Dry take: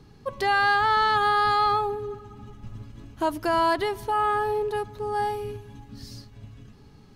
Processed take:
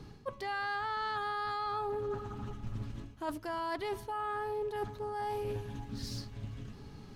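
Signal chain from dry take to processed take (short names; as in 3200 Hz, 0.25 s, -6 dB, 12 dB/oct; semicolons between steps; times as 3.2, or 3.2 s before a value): reverse; compressor 16:1, threshold -35 dBFS, peak gain reduction 17 dB; reverse; Doppler distortion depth 0.26 ms; gain +2 dB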